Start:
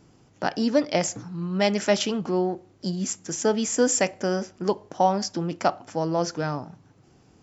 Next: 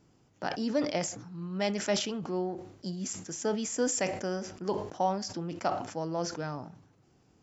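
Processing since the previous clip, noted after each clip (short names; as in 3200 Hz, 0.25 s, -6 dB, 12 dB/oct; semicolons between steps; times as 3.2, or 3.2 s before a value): sustainer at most 80 dB/s; gain -8.5 dB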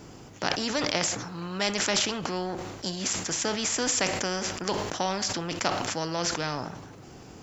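spectral compressor 2:1; gain +7.5 dB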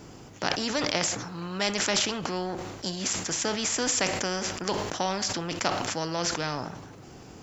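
nothing audible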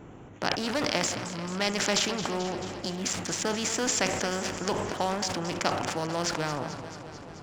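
Wiener smoothing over 9 samples; warbling echo 0.219 s, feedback 71%, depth 80 cents, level -12 dB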